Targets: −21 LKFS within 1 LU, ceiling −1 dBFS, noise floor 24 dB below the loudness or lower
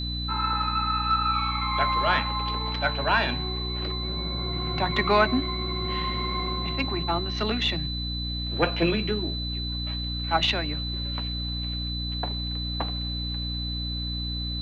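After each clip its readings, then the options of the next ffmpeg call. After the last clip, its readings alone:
mains hum 60 Hz; hum harmonics up to 300 Hz; level of the hum −29 dBFS; interfering tone 4,000 Hz; level of the tone −32 dBFS; integrated loudness −26.5 LKFS; sample peak −8.5 dBFS; target loudness −21.0 LKFS
→ -af "bandreject=frequency=60:width_type=h:width=6,bandreject=frequency=120:width_type=h:width=6,bandreject=frequency=180:width_type=h:width=6,bandreject=frequency=240:width_type=h:width=6,bandreject=frequency=300:width_type=h:width=6"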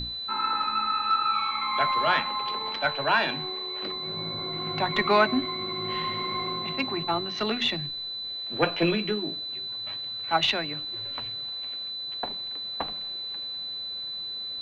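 mains hum none found; interfering tone 4,000 Hz; level of the tone −32 dBFS
→ -af "bandreject=frequency=4000:width=30"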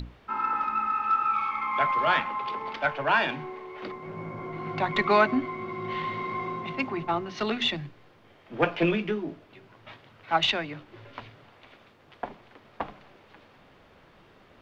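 interfering tone none found; integrated loudness −28.0 LKFS; sample peak −9.0 dBFS; target loudness −21.0 LKFS
→ -af "volume=7dB"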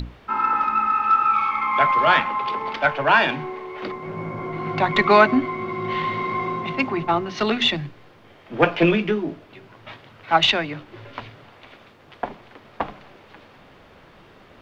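integrated loudness −21.0 LKFS; sample peak −2.0 dBFS; background noise floor −50 dBFS

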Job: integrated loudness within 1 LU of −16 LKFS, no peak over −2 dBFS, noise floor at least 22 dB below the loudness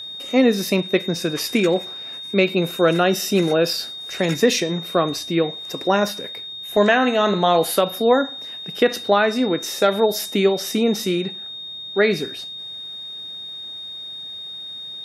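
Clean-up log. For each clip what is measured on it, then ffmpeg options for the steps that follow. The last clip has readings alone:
interfering tone 3,700 Hz; level of the tone −31 dBFS; integrated loudness −21.0 LKFS; sample peak −4.5 dBFS; target loudness −16.0 LKFS
→ -af "bandreject=frequency=3700:width=30"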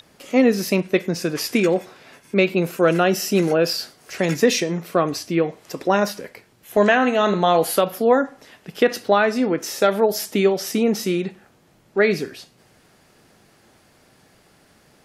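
interfering tone none found; integrated loudness −20.0 LKFS; sample peak −4.5 dBFS; target loudness −16.0 LKFS
→ -af "volume=4dB,alimiter=limit=-2dB:level=0:latency=1"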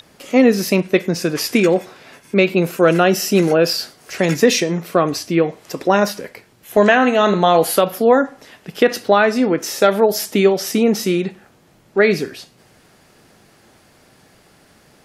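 integrated loudness −16.5 LKFS; sample peak −2.0 dBFS; background noise floor −52 dBFS

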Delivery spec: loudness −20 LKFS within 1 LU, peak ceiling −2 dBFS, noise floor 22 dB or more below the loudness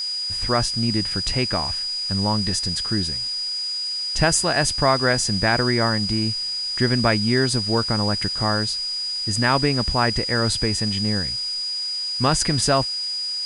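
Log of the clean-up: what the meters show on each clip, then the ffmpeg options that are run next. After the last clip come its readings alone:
interfering tone 4,900 Hz; level of the tone −24 dBFS; background noise floor −27 dBFS; target noise floor −43 dBFS; integrated loudness −21.0 LKFS; sample peak −5.0 dBFS; target loudness −20.0 LKFS
→ -af "bandreject=frequency=4900:width=30"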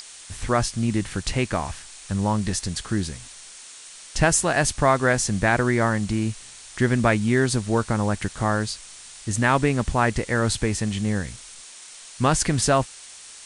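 interfering tone none found; background noise floor −43 dBFS; target noise floor −45 dBFS
→ -af "afftdn=noise_reduction=6:noise_floor=-43"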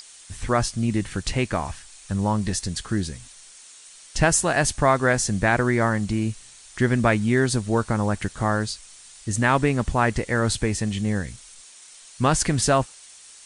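background noise floor −47 dBFS; integrated loudness −23.0 LKFS; sample peak −5.5 dBFS; target loudness −20.0 LKFS
→ -af "volume=3dB"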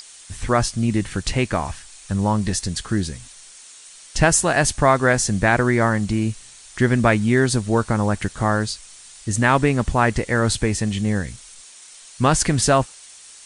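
integrated loudness −20.0 LKFS; sample peak −2.5 dBFS; background noise floor −44 dBFS

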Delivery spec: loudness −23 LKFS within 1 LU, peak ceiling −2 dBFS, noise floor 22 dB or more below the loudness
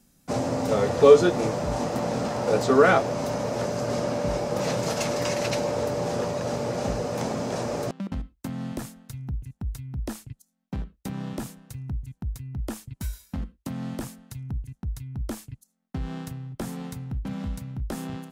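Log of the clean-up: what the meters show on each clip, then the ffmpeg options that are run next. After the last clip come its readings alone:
integrated loudness −27.0 LKFS; sample peak −3.5 dBFS; target loudness −23.0 LKFS
→ -af "volume=4dB,alimiter=limit=-2dB:level=0:latency=1"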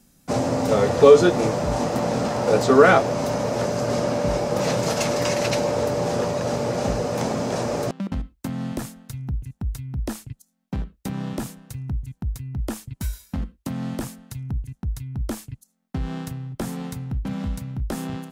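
integrated loudness −23.5 LKFS; sample peak −2.0 dBFS; background noise floor −68 dBFS

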